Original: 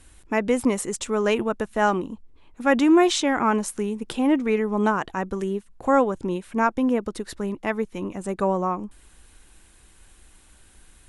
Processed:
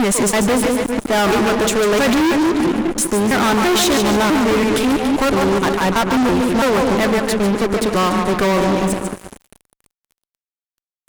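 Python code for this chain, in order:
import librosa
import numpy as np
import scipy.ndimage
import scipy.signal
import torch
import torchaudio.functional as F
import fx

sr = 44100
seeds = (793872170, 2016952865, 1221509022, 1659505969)

y = fx.block_reorder(x, sr, ms=331.0, group=3)
y = fx.echo_split(y, sr, split_hz=460.0, low_ms=199, high_ms=145, feedback_pct=52, wet_db=-8.5)
y = fx.fuzz(y, sr, gain_db=33.0, gate_db=-40.0)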